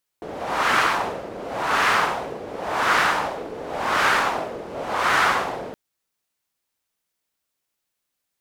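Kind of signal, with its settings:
wind from filtered noise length 5.52 s, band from 460 Hz, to 1,400 Hz, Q 1.8, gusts 5, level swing 16 dB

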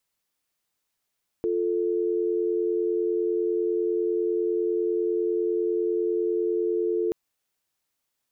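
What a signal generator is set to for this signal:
call progress tone dial tone, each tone −25 dBFS 5.68 s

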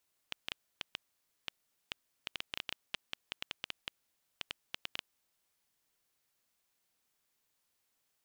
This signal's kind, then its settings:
Geiger counter clicks 6.1 per second −18.5 dBFS 4.87 s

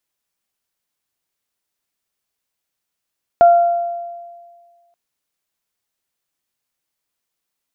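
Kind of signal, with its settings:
harmonic partials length 1.53 s, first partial 690 Hz, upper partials −19 dB, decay 1.72 s, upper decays 0.94 s, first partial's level −4 dB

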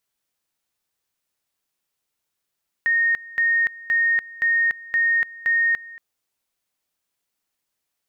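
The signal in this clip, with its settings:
tone at two levels in turn 1,850 Hz −16 dBFS, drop 20.5 dB, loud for 0.29 s, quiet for 0.23 s, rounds 6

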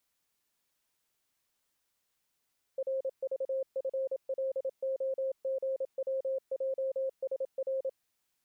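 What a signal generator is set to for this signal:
Morse code "RVFLOGWJSR" 27 words per minute 532 Hz −29.5 dBFS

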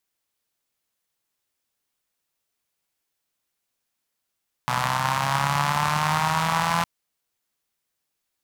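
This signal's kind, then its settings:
pulse-train model of a four-cylinder engine, changing speed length 2.16 s, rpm 3,700, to 5,100, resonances 150/950 Hz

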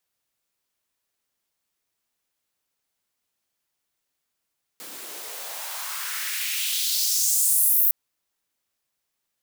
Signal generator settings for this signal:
filter sweep on noise white, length 3.11 s highpass, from 250 Hz, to 15,000 Hz, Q 2.3, exponential, gain ramp +21 dB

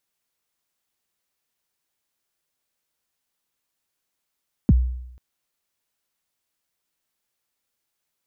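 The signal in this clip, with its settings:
synth kick length 0.49 s, from 290 Hz, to 62 Hz, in 33 ms, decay 0.81 s, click off, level −9 dB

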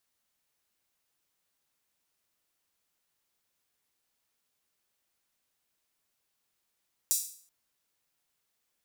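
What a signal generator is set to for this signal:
open synth hi-hat length 0.38 s, high-pass 6,600 Hz, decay 0.50 s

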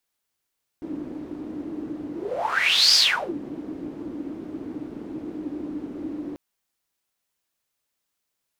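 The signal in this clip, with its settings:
pass-by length 5.54 s, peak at 0:02.14, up 0.88 s, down 0.40 s, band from 300 Hz, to 4,900 Hz, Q 9.8, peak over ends 17 dB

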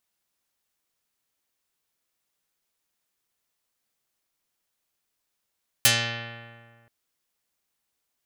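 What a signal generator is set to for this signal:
Karplus-Strong string A#2, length 1.03 s, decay 1.86 s, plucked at 0.36, dark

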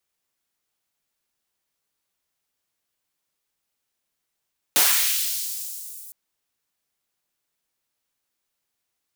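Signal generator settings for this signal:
filter sweep on noise white, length 1.36 s highpass, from 120 Hz, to 9,200 Hz, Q 0.88, linear, gain ramp −24 dB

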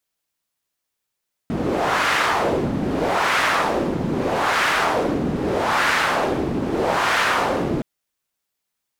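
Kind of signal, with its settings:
wind from filtered noise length 6.32 s, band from 240 Hz, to 1,600 Hz, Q 1.4, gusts 5, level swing 4 dB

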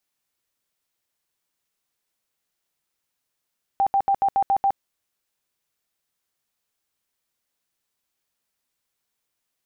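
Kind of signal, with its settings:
tone bursts 789 Hz, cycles 52, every 0.14 s, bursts 7, −16 dBFS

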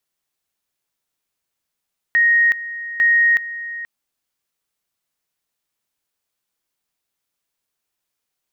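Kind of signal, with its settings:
tone at two levels in turn 1,870 Hz −11 dBFS, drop 15 dB, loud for 0.37 s, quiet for 0.48 s, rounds 2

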